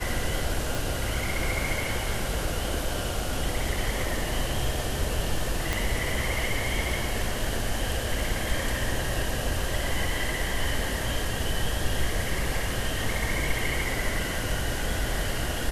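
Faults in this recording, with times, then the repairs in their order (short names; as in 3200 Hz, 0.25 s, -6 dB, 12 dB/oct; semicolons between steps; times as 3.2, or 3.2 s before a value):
0.75 pop
5.73 pop -11 dBFS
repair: de-click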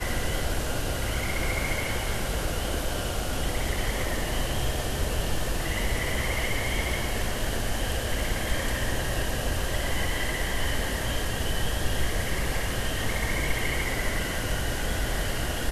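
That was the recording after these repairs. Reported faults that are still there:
5.73 pop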